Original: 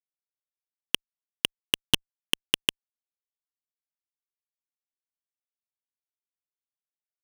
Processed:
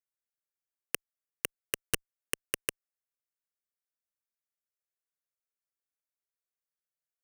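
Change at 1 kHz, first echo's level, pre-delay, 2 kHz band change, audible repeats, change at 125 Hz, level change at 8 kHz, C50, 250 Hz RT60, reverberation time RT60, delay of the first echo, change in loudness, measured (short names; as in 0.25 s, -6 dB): -6.0 dB, none, none, -6.5 dB, none, -7.0 dB, -1.5 dB, none, none, none, none, -8.5 dB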